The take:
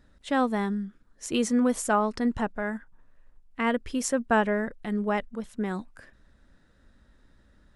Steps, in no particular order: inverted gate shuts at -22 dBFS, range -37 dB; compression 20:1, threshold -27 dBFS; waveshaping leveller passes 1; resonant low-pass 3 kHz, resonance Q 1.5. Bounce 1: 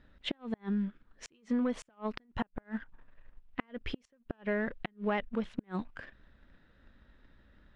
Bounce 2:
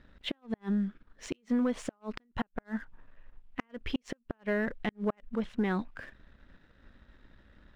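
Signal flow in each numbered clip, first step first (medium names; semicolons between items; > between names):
waveshaping leveller > compression > inverted gate > resonant low-pass; resonant low-pass > compression > inverted gate > waveshaping leveller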